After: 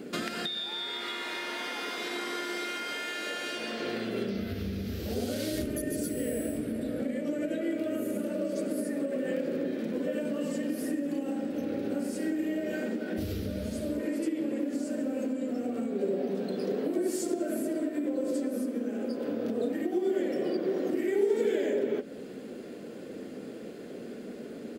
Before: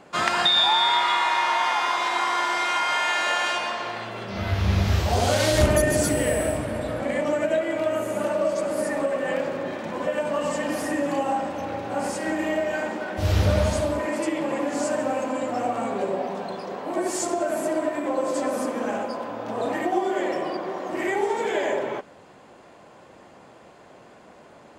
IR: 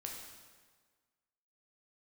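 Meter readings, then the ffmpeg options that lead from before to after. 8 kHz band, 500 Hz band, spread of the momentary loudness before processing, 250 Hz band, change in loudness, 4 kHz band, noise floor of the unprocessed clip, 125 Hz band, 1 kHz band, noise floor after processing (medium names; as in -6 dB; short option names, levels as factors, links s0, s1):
-10.5 dB, -6.5 dB, 9 LU, -1.0 dB, -8.0 dB, -12.0 dB, -50 dBFS, -14.0 dB, -18.5 dB, -42 dBFS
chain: -af "flanger=delay=0.8:depth=5.9:regen=-83:speed=0.15:shape=triangular,firequalizer=gain_entry='entry(120,0);entry(240,14);entry(360,1);entry(970,-15);entry(1400,-1);entry(4600,5);entry(6700,1);entry(13000,15)':delay=0.05:min_phase=1,acompressor=threshold=0.0126:ratio=8,equalizer=f=440:t=o:w=0.8:g=14.5,volume=1.58"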